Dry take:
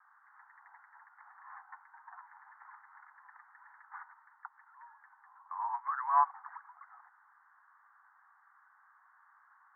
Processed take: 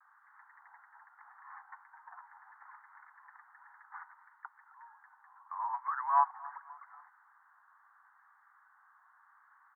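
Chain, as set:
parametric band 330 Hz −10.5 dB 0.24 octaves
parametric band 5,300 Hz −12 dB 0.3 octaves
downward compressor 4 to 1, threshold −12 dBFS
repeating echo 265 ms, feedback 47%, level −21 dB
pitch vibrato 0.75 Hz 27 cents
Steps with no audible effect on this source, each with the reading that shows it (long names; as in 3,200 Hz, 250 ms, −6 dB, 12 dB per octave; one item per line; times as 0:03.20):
parametric band 330 Hz: nothing at its input below 680 Hz
parametric band 5,300 Hz: nothing at its input above 1,800 Hz
downward compressor, threshold −12 dBFS: peak of its input −15.0 dBFS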